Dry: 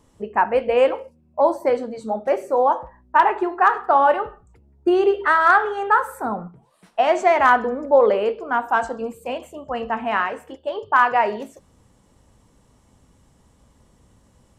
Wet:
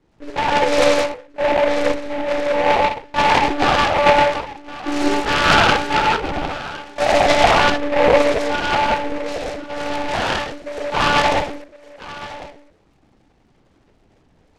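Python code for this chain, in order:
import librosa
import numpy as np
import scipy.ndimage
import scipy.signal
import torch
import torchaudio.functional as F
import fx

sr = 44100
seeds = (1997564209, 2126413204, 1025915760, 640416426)

p1 = scipy.signal.sosfilt(scipy.signal.butter(2, 130.0, 'highpass', fs=sr, output='sos'), x)
p2 = fx.peak_eq(p1, sr, hz=1100.0, db=-9.0, octaves=0.34)
p3 = p2 + fx.echo_single(p2, sr, ms=1066, db=-16.5, dry=0)
p4 = fx.rev_gated(p3, sr, seeds[0], gate_ms=230, shape='flat', drr_db=-7.5)
p5 = fx.lpc_monotone(p4, sr, seeds[1], pitch_hz=290.0, order=16)
p6 = fx.noise_mod_delay(p5, sr, seeds[2], noise_hz=1300.0, depth_ms=0.091)
y = p6 * 10.0 ** (-4.0 / 20.0)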